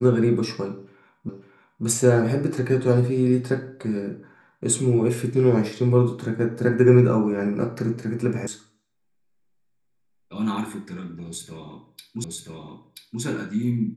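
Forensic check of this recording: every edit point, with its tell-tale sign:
0:01.29: the same again, the last 0.55 s
0:08.47: cut off before it has died away
0:12.24: the same again, the last 0.98 s

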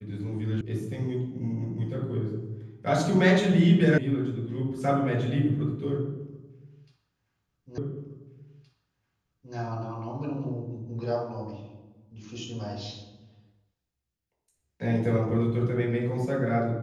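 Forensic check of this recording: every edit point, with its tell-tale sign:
0:00.61: cut off before it has died away
0:03.98: cut off before it has died away
0:07.78: the same again, the last 1.77 s

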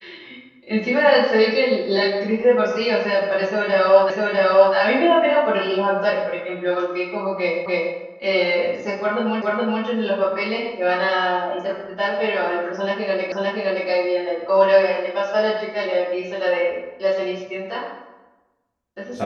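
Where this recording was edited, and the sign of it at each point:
0:04.10: the same again, the last 0.65 s
0:07.66: the same again, the last 0.29 s
0:09.42: the same again, the last 0.42 s
0:13.32: the same again, the last 0.57 s

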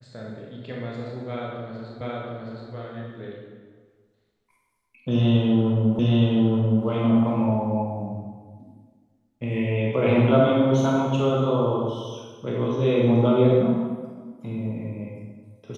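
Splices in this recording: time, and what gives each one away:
0:02.01: the same again, the last 0.72 s
0:05.99: the same again, the last 0.87 s

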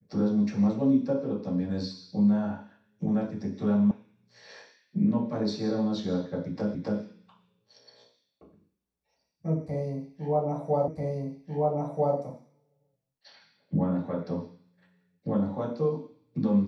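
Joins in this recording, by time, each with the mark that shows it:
0:03.91: cut off before it has died away
0:06.75: the same again, the last 0.27 s
0:10.88: the same again, the last 1.29 s

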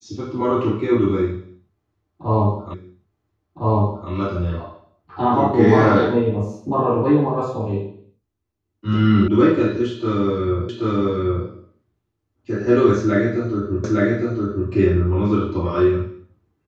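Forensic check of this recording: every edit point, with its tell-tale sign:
0:02.74: the same again, the last 1.36 s
0:09.28: cut off before it has died away
0:10.69: the same again, the last 0.78 s
0:13.84: the same again, the last 0.86 s

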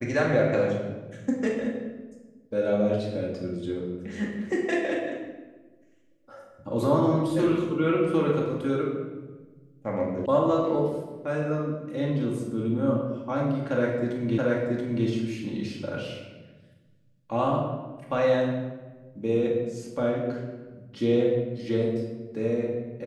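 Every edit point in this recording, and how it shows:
0:10.26: cut off before it has died away
0:14.38: the same again, the last 0.68 s

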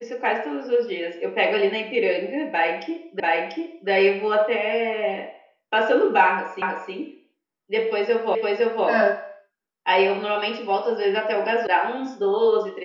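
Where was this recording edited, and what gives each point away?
0:03.20: the same again, the last 0.69 s
0:06.62: the same again, the last 0.31 s
0:08.35: the same again, the last 0.51 s
0:11.67: cut off before it has died away

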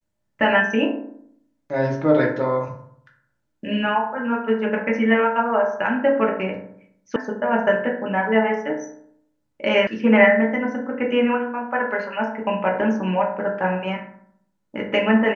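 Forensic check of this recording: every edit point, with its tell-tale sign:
0:07.16: cut off before it has died away
0:09.87: cut off before it has died away

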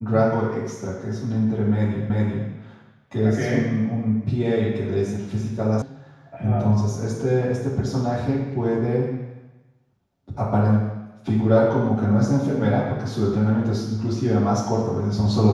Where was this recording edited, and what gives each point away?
0:02.10: the same again, the last 0.38 s
0:05.82: cut off before it has died away

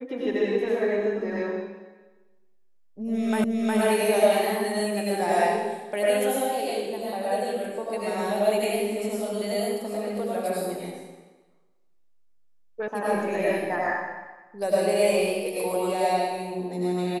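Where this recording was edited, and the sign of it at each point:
0:03.44: the same again, the last 0.36 s
0:12.88: cut off before it has died away

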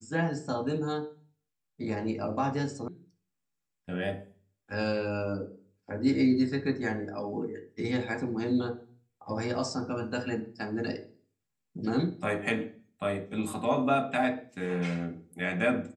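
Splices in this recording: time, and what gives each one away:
0:02.88: cut off before it has died away

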